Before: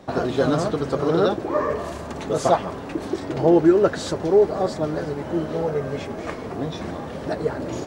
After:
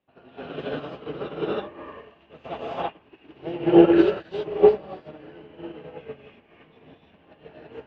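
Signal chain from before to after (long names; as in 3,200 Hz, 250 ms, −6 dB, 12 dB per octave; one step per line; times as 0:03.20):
transistor ladder low-pass 3,000 Hz, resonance 75%
reverb whose tail is shaped and stops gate 360 ms rising, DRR −6.5 dB
expander for the loud parts 2.5 to 1, over −36 dBFS
level +7.5 dB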